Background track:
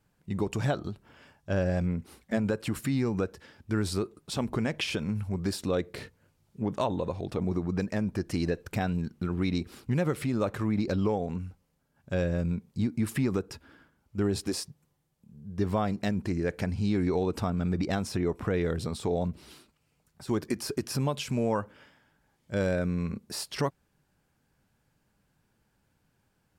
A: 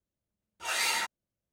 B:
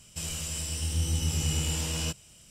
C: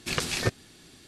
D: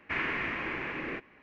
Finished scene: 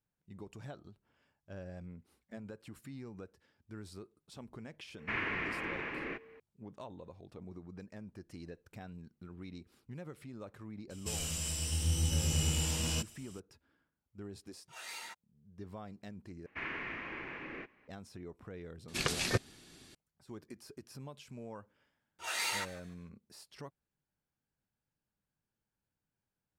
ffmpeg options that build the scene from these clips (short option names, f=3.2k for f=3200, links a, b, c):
-filter_complex "[4:a]asplit=2[a][b];[1:a]asplit=2[c][d];[0:a]volume=-19dB[e];[a]aeval=exprs='val(0)+0.00282*sin(2*PI*450*n/s)':c=same[f];[d]asplit=4[g][h][i][j];[h]adelay=148,afreqshift=-120,volume=-18.5dB[k];[i]adelay=296,afreqshift=-240,volume=-27.9dB[l];[j]adelay=444,afreqshift=-360,volume=-37.2dB[m];[g][k][l][m]amix=inputs=4:normalize=0[n];[e]asplit=2[o][p];[o]atrim=end=16.464[q];[b]atrim=end=1.42,asetpts=PTS-STARTPTS,volume=-8.5dB[r];[p]atrim=start=17.876[s];[f]atrim=end=1.42,asetpts=PTS-STARTPTS,volume=-4dB,afade=t=in:d=0.004:c=hsin,afade=t=out:st=1.416:d=0.004:c=hsin,adelay=4980[t];[2:a]atrim=end=2.5,asetpts=PTS-STARTPTS,volume=-3dB,afade=t=in:d=0.004:c=hsin,afade=t=out:st=2.496:d=0.004:c=hsin,adelay=480690S[u];[c]atrim=end=1.52,asetpts=PTS-STARTPTS,volume=-16.5dB,afade=t=in:d=0.004:c=hsin,afade=t=out:st=1.516:d=0.004:c=hsin,adelay=14080[v];[3:a]atrim=end=1.07,asetpts=PTS-STARTPTS,volume=-4.5dB,afade=t=in:d=0.004:c=hsin,afade=t=out:st=1.066:d=0.004:c=hsin,adelay=18880[w];[n]atrim=end=1.52,asetpts=PTS-STARTPTS,volume=-6dB,afade=t=in:d=0.004:c=hsin,afade=t=out:st=1.516:d=0.004:c=hsin,adelay=21590[x];[q][r]acrossfade=d=0.004:c1=hsin:c2=hsin[y];[y][s]acrossfade=d=0.004:c1=hsin:c2=hsin[z];[z][t][u][v][w][x]amix=inputs=6:normalize=0"